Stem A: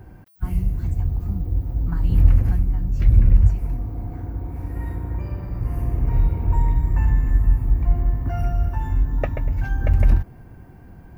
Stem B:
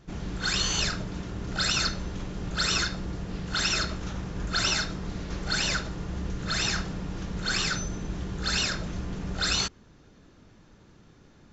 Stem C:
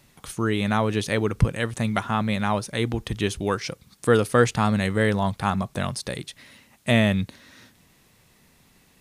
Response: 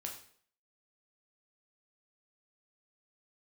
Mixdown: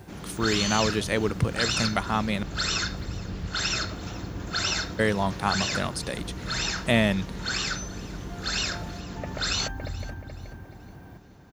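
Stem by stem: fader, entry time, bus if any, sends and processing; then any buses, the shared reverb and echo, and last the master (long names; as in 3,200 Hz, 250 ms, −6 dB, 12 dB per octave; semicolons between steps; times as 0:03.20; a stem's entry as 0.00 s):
+1.0 dB, 0.00 s, no send, echo send −6.5 dB, downward compressor 10 to 1, threshold −24 dBFS, peak gain reduction 17.5 dB; automatic ducking −8 dB, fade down 1.70 s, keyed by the third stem
−1.0 dB, 0.00 s, no send, echo send −20 dB, no processing
−1.0 dB, 0.00 s, muted 0:02.43–0:04.99, no send, no echo send, no processing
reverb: not used
echo: repeating echo 428 ms, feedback 35%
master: high-pass filter 160 Hz 6 dB per octave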